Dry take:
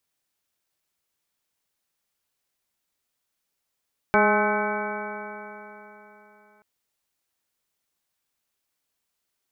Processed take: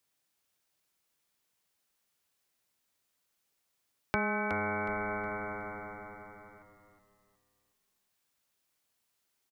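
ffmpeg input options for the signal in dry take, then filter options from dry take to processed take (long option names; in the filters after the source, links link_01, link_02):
-f lavfi -i "aevalsrc='0.0631*pow(10,-3*t/3.54)*sin(2*PI*207.21*t)+0.0794*pow(10,-3*t/3.54)*sin(2*PI*415.65*t)+0.075*pow(10,-3*t/3.54)*sin(2*PI*626.56*t)+0.0891*pow(10,-3*t/3.54)*sin(2*PI*841.14*t)+0.0501*pow(10,-3*t/3.54)*sin(2*PI*1060.56*t)+0.0501*pow(10,-3*t/3.54)*sin(2*PI*1285.93*t)+0.0841*pow(10,-3*t/3.54)*sin(2*PI*1518.34*t)+0.0119*pow(10,-3*t/3.54)*sin(2*PI*1758.79*t)+0.0133*pow(10,-3*t/3.54)*sin(2*PI*2008.24*t)+0.0473*pow(10,-3*t/3.54)*sin(2*PI*2267.57*t)':duration=2.48:sample_rate=44100"
-filter_complex "[0:a]highpass=59,acrossover=split=150|3000[link_01][link_02][link_03];[link_02]acompressor=threshold=-32dB:ratio=6[link_04];[link_01][link_04][link_03]amix=inputs=3:normalize=0,asplit=5[link_05][link_06][link_07][link_08][link_09];[link_06]adelay=367,afreqshift=-110,volume=-8dB[link_10];[link_07]adelay=734,afreqshift=-220,volume=-17.1dB[link_11];[link_08]adelay=1101,afreqshift=-330,volume=-26.2dB[link_12];[link_09]adelay=1468,afreqshift=-440,volume=-35.4dB[link_13];[link_05][link_10][link_11][link_12][link_13]amix=inputs=5:normalize=0"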